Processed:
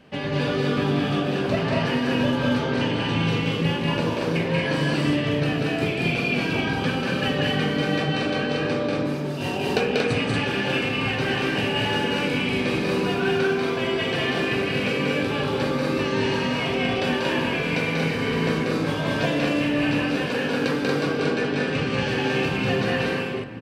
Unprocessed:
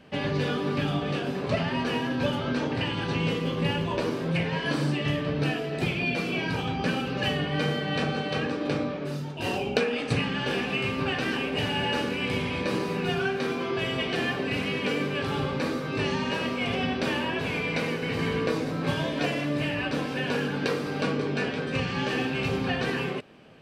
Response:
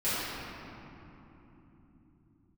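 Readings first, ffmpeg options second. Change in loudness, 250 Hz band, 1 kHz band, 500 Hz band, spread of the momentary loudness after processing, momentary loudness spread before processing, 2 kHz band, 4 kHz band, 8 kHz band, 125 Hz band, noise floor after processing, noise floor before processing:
+4.5 dB, +5.0 dB, +3.5 dB, +5.0 dB, 2 LU, 2 LU, +4.5 dB, +4.0 dB, +4.0 dB, +4.0 dB, −27 dBFS, −32 dBFS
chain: -filter_complex "[0:a]aecho=1:1:189.5|233.2:0.794|0.794,asplit=2[link_01][link_02];[1:a]atrim=start_sample=2205[link_03];[link_02][link_03]afir=irnorm=-1:irlink=0,volume=-21dB[link_04];[link_01][link_04]amix=inputs=2:normalize=0"

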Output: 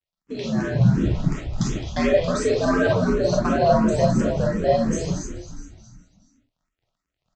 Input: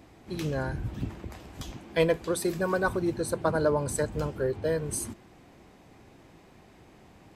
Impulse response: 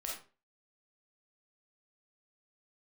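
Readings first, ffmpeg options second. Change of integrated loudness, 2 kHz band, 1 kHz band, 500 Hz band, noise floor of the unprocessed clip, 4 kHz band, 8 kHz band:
+8.0 dB, +4.5 dB, +9.0 dB, +7.5 dB, −55 dBFS, +7.5 dB, +1.0 dB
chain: -filter_complex "[0:a]afreqshift=75,asplit=2[link_01][link_02];[link_02]acompressor=threshold=-35dB:ratio=6,volume=2.5dB[link_03];[link_01][link_03]amix=inputs=2:normalize=0,asoftclip=type=tanh:threshold=-16.5dB,agate=range=-15dB:threshold=-36dB:ratio=16:detection=peak,aresample=16000,aeval=exprs='sgn(val(0))*max(abs(val(0))-0.002,0)':channel_layout=same,aresample=44100,bass=frequency=250:gain=13,treble=frequency=4000:gain=4,asplit=7[link_04][link_05][link_06][link_07][link_08][link_09][link_10];[link_05]adelay=212,afreqshift=-69,volume=-10dB[link_11];[link_06]adelay=424,afreqshift=-138,volume=-15.5dB[link_12];[link_07]adelay=636,afreqshift=-207,volume=-21dB[link_13];[link_08]adelay=848,afreqshift=-276,volume=-26.5dB[link_14];[link_09]adelay=1060,afreqshift=-345,volume=-32.1dB[link_15];[link_10]adelay=1272,afreqshift=-414,volume=-37.6dB[link_16];[link_04][link_11][link_12][link_13][link_14][link_15][link_16]amix=inputs=7:normalize=0[link_17];[1:a]atrim=start_sample=2205,atrim=end_sample=3969[link_18];[link_17][link_18]afir=irnorm=-1:irlink=0,dynaudnorm=framelen=250:gausssize=5:maxgain=8dB,asplit=2[link_19][link_20];[link_20]afreqshift=2.8[link_21];[link_19][link_21]amix=inputs=2:normalize=1"

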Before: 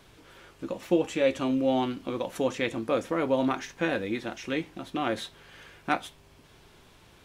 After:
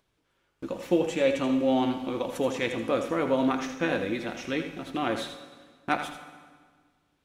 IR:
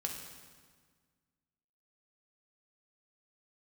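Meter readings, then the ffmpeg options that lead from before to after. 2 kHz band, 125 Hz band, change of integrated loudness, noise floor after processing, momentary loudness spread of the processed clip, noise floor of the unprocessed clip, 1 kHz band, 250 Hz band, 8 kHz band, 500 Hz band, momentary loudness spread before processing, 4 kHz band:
+1.0 dB, +0.5 dB, +1.0 dB, −74 dBFS, 14 LU, −57 dBFS, +1.0 dB, +1.5 dB, +0.5 dB, +0.5 dB, 11 LU, +1.0 dB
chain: -filter_complex "[0:a]acompressor=mode=upward:threshold=-48dB:ratio=2.5,agate=range=-22dB:threshold=-46dB:ratio=16:detection=peak,asplit=2[link_01][link_02];[1:a]atrim=start_sample=2205,lowshelf=frequency=150:gain=-8.5,adelay=81[link_03];[link_02][link_03]afir=irnorm=-1:irlink=0,volume=-7.5dB[link_04];[link_01][link_04]amix=inputs=2:normalize=0"

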